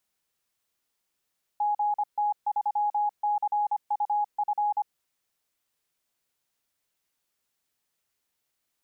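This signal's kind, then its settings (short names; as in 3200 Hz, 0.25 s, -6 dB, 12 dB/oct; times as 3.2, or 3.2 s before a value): Morse "GT3CUF" 25 wpm 832 Hz -22.5 dBFS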